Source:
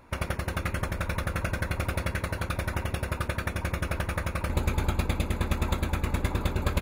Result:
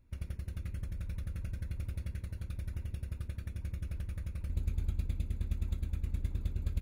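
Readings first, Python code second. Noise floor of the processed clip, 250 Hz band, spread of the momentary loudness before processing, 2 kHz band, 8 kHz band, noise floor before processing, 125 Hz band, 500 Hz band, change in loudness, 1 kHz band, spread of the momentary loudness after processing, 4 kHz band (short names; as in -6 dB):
-49 dBFS, -14.0 dB, 3 LU, -24.0 dB, -18.0 dB, -39 dBFS, -7.0 dB, -23.0 dB, -9.0 dB, -29.5 dB, 5 LU, -20.0 dB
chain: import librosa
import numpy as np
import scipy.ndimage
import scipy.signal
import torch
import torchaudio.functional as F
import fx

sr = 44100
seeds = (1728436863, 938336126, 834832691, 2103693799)

y = fx.tone_stack(x, sr, knobs='10-0-1')
y = y * 10.0 ** (2.5 / 20.0)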